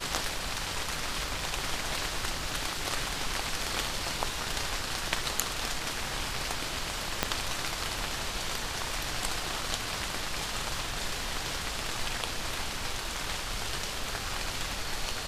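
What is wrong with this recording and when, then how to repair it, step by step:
7.23 s: pop -8 dBFS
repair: de-click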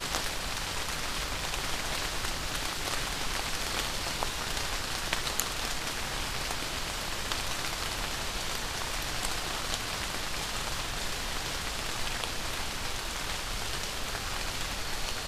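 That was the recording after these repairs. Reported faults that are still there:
7.23 s: pop

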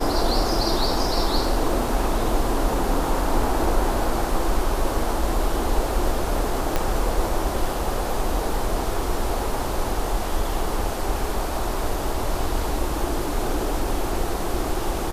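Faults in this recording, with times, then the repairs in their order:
6.76 s: pop -7 dBFS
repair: de-click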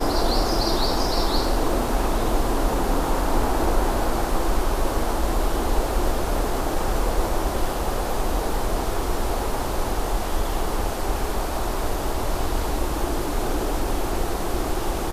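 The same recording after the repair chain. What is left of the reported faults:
6.76 s: pop

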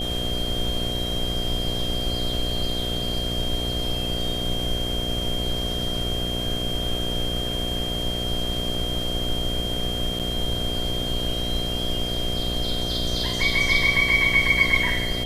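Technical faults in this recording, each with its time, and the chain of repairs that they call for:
buzz 60 Hz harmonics 12 -30 dBFS
whine 3.2 kHz -28 dBFS
10.19–10.20 s: dropout 7.4 ms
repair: de-hum 60 Hz, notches 12; band-stop 3.2 kHz, Q 30; interpolate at 10.19 s, 7.4 ms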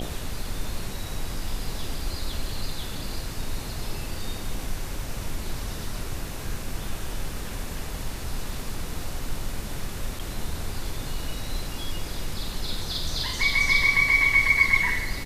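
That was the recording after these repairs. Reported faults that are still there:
nothing left

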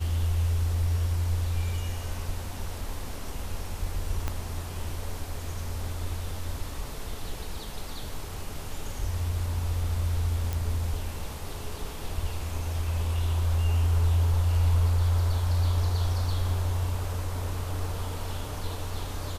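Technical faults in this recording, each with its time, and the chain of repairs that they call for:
4.28 s: pop -15 dBFS
10.53 s: pop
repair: de-click

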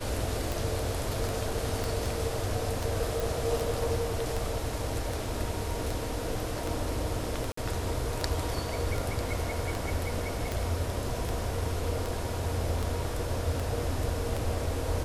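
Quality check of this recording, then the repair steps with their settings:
tick 78 rpm
1.84 s: pop
3.20 s: pop
7.52–7.57 s: dropout 54 ms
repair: de-click; interpolate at 7.52 s, 54 ms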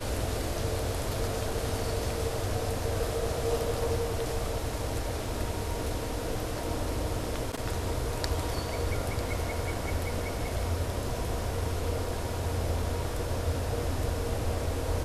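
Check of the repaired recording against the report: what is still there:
1.84 s: pop

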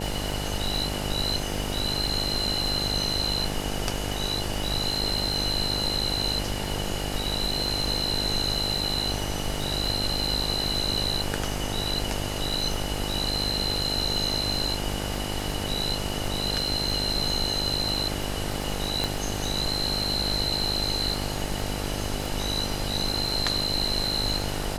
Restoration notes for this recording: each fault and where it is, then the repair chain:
buzz 50 Hz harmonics 18 -32 dBFS
crackle 47 per s -31 dBFS
19.04 s: pop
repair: de-click; de-hum 50 Hz, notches 18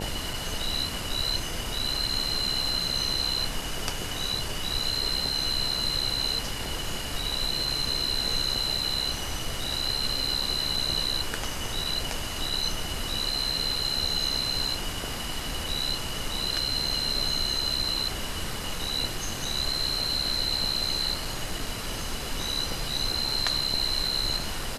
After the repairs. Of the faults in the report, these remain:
nothing left

